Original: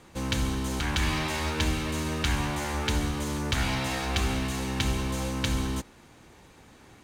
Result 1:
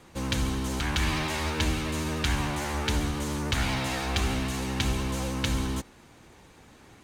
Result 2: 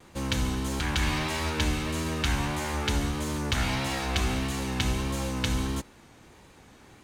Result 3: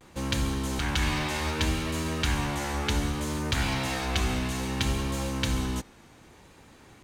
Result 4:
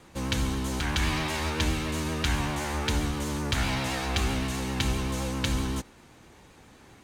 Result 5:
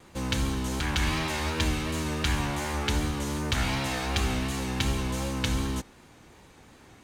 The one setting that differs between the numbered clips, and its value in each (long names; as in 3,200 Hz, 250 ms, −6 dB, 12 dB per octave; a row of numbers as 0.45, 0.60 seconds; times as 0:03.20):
pitch vibrato, speed: 13, 1.6, 0.64, 7.7, 2.7 Hertz